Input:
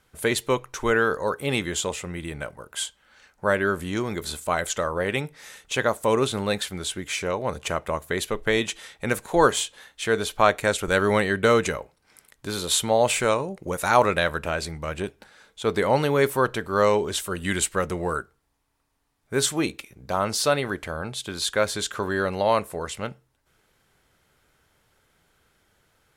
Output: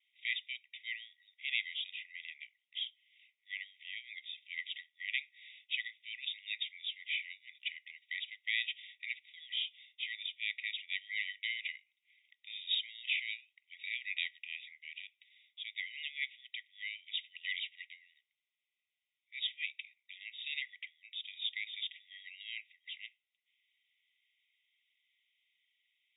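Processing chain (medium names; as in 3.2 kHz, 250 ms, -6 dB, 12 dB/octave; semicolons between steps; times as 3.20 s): vibrato 0.5 Hz 17 cents; brick-wall FIR band-pass 1.9–3.8 kHz; trim -5 dB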